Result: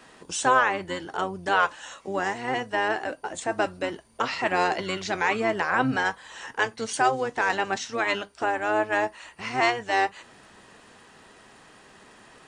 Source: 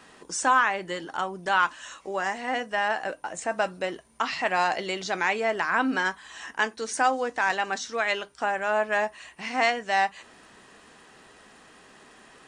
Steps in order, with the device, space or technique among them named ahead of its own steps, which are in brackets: octave pedal (harmoniser -12 st -7 dB)

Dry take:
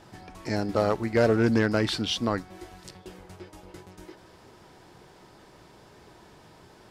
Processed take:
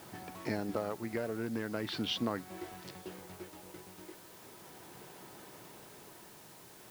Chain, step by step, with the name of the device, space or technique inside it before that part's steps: medium wave at night (BPF 120–3900 Hz; compressor, threshold -29 dBFS, peak gain reduction 12 dB; tremolo 0.38 Hz, depth 42%; whine 10000 Hz -70 dBFS; white noise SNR 16 dB)

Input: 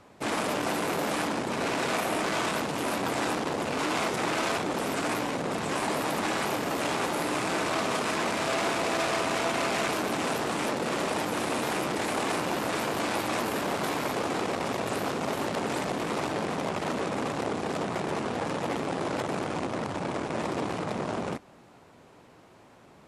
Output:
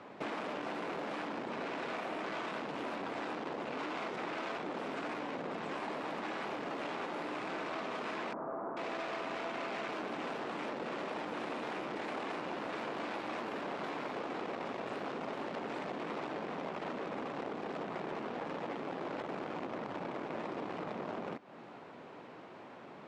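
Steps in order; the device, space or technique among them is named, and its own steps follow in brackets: AM radio (BPF 190–3200 Hz; compressor 5:1, threshold -42 dBFS, peak gain reduction 15 dB; soft clip -32 dBFS, distortion -26 dB); 8.33–8.77 steep low-pass 1300 Hz 36 dB/oct; gain +4.5 dB

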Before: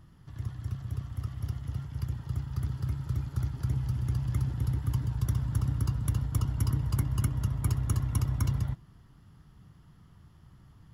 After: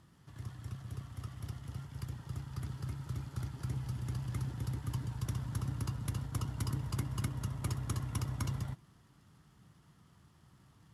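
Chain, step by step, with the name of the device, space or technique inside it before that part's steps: early wireless headset (HPF 190 Hz 6 dB/oct; CVSD 64 kbps); gain -2 dB

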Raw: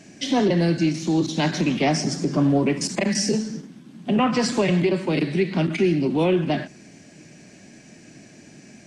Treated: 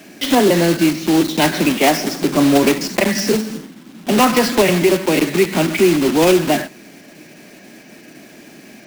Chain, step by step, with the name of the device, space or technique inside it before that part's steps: early digital voice recorder (BPF 250–4000 Hz; block floating point 3-bit); 1.73–2.22 bell 100 Hz -8.5 dB 1.8 oct; gain +8.5 dB

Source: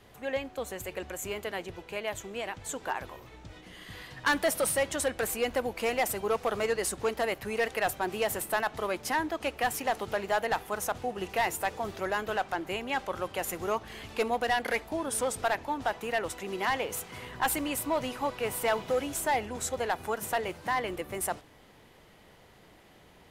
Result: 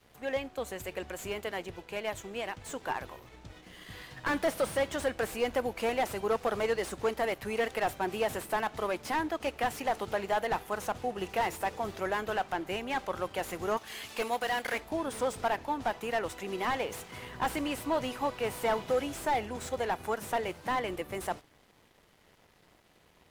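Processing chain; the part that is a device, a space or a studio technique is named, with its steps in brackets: 13.77–14.78 tilt +3 dB/oct; early transistor amplifier (crossover distortion -58.5 dBFS; slew limiter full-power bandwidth 59 Hz)

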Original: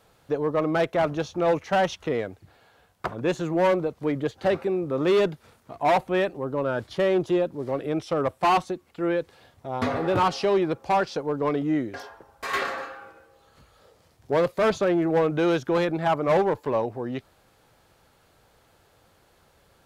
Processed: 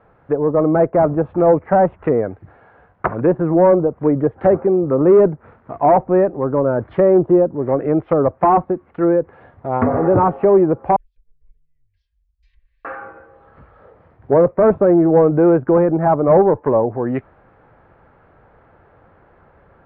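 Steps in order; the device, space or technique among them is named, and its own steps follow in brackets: treble ducked by the level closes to 810 Hz, closed at -22 dBFS; 10.96–12.85 inverse Chebyshev band-stop 170–1400 Hz, stop band 70 dB; dynamic EQ 2400 Hz, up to +6 dB, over -51 dBFS, Q 2.1; action camera in a waterproof case (LPF 1800 Hz 24 dB/oct; AGC gain up to 3 dB; gain +7.5 dB; AAC 128 kbps 48000 Hz)

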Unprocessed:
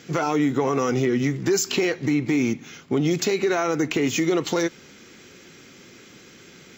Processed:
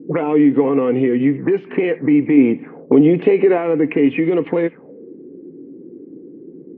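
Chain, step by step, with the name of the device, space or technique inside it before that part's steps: 2.37–3.58 bell 550 Hz +5.5 dB 2.5 oct; envelope filter bass rig (envelope low-pass 300–3000 Hz up, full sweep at -19.5 dBFS; speaker cabinet 81–2000 Hz, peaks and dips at 93 Hz -10 dB, 170 Hz +5 dB, 280 Hz +10 dB, 470 Hz +10 dB, 1400 Hz -10 dB)

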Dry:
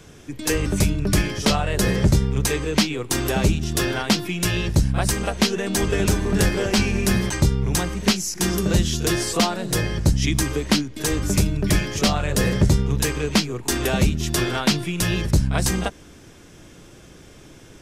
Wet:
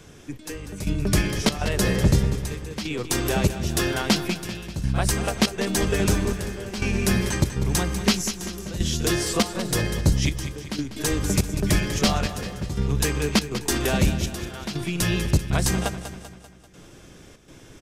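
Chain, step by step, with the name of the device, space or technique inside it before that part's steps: trance gate with a delay (step gate "xxx....xxxxx.xxx" 121 bpm -12 dB; feedback echo 0.195 s, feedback 51%, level -11 dB); gain -1.5 dB

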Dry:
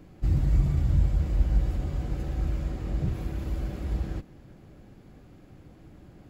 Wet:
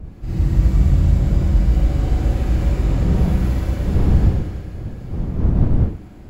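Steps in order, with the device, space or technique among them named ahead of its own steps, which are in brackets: Schroeder reverb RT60 2.2 s, combs from 33 ms, DRR -10 dB; smartphone video outdoors (wind noise 120 Hz; AGC gain up to 5.5 dB; gain -2 dB; AAC 96 kbps 44100 Hz)

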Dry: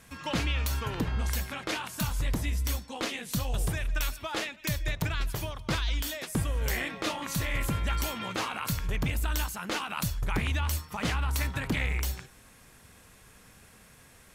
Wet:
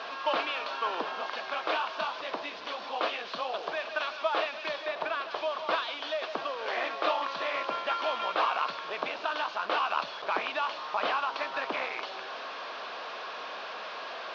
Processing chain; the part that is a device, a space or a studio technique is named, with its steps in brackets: digital answering machine (BPF 360–3300 Hz; delta modulation 32 kbps, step -38 dBFS; speaker cabinet 460–4400 Hz, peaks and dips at 650 Hz +7 dB, 1100 Hz +5 dB, 2000 Hz -8 dB); 4.86–5.31 high shelf 4000 Hz -7.5 dB; gain +5 dB

